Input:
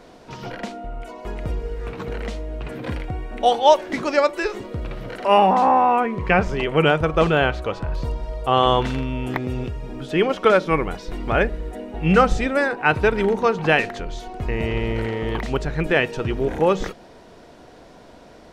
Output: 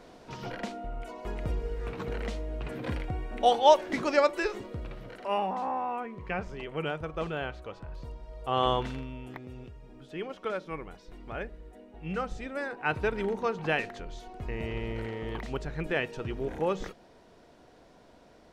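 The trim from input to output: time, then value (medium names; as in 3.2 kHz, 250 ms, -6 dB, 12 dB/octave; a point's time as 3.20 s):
4.39 s -5.5 dB
5.51 s -16 dB
8.27 s -16 dB
8.65 s -8.5 dB
9.38 s -18 dB
12.31 s -18 dB
12.91 s -11 dB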